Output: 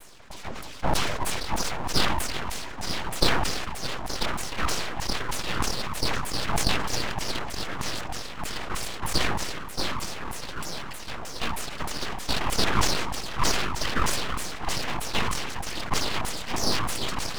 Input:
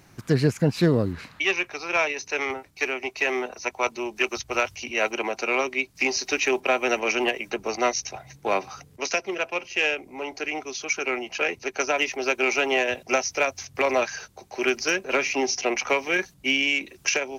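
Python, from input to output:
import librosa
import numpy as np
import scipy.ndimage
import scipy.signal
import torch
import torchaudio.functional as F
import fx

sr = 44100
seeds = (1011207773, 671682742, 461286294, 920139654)

p1 = fx.wiener(x, sr, points=25)
p2 = fx.rotary_switch(p1, sr, hz=0.85, then_hz=6.0, switch_at_s=13.14)
p3 = fx.quant_dither(p2, sr, seeds[0], bits=6, dither='triangular')
p4 = p2 + (p3 * librosa.db_to_amplitude(-5.5))
p5 = fx.noise_vocoder(p4, sr, seeds[1], bands=16)
p6 = p5 + fx.echo_swing(p5, sr, ms=1455, ratio=1.5, feedback_pct=34, wet_db=-6.0, dry=0)
p7 = fx.filter_lfo_bandpass(p6, sr, shape='saw_down', hz=3.2, low_hz=450.0, high_hz=5300.0, q=2.1)
p8 = np.abs(p7)
p9 = fx.sustainer(p8, sr, db_per_s=34.0)
y = p9 * librosa.db_to_amplitude(4.5)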